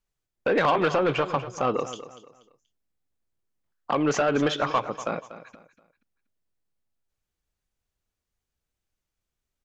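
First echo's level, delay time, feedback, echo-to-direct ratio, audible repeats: -14.0 dB, 240 ms, 31%, -13.5 dB, 3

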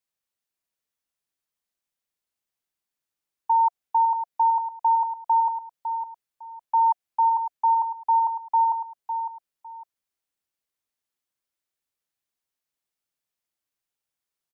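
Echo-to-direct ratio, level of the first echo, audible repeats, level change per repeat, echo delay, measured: -8.5 dB, -8.5 dB, 2, -13.0 dB, 555 ms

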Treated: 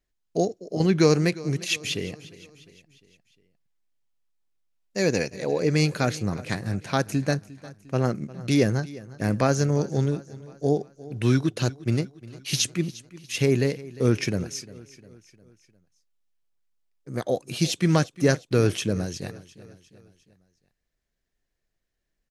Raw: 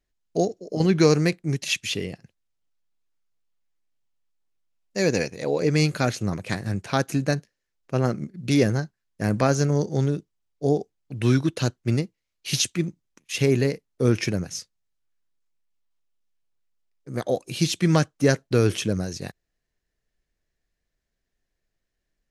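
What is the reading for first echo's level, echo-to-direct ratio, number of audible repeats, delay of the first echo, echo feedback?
-19.0 dB, -17.5 dB, 3, 353 ms, 51%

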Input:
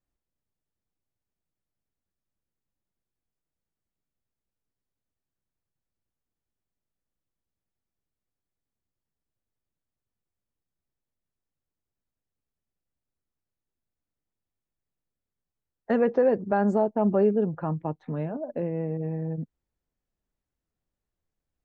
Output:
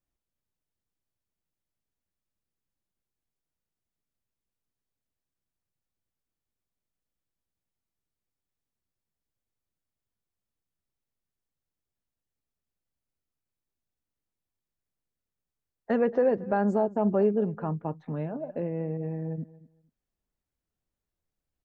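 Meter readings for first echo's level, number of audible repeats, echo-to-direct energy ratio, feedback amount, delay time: -19.0 dB, 2, -19.0 dB, 19%, 229 ms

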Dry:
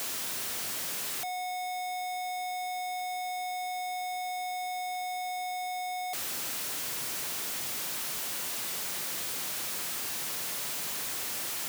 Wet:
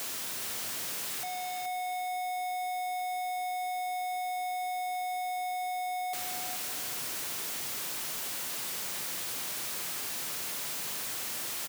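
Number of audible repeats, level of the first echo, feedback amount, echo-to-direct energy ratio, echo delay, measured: 3, -8.0 dB, 26%, -7.5 dB, 424 ms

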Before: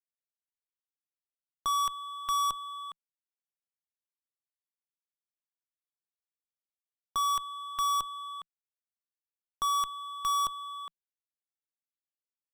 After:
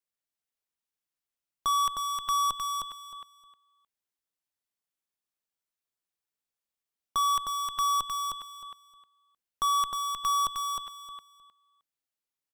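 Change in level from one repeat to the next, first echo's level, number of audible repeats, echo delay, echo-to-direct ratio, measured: -14.0 dB, -4.0 dB, 3, 310 ms, -4.0 dB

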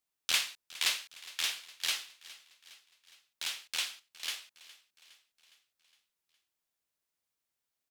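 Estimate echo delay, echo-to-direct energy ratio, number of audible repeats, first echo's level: 412 ms, -17.5 dB, 4, -19.0 dB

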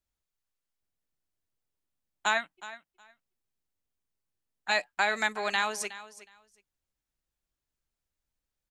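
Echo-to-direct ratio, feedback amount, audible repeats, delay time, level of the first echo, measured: -16.0 dB, 17%, 2, 366 ms, -16.0 dB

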